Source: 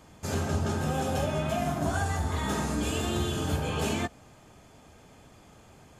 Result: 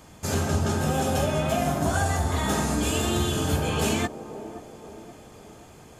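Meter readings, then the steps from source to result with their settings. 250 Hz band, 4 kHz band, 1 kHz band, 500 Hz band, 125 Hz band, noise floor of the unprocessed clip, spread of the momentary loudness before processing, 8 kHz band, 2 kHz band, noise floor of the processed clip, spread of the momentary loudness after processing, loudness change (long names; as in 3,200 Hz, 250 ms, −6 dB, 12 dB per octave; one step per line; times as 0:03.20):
+4.5 dB, +5.5 dB, +4.5 dB, +4.5 dB, +4.0 dB, −55 dBFS, 2 LU, +7.5 dB, +4.5 dB, −49 dBFS, 16 LU, +4.5 dB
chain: high-shelf EQ 6,200 Hz +5.5 dB
delay with a band-pass on its return 525 ms, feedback 50%, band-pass 470 Hz, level −10 dB
level +4 dB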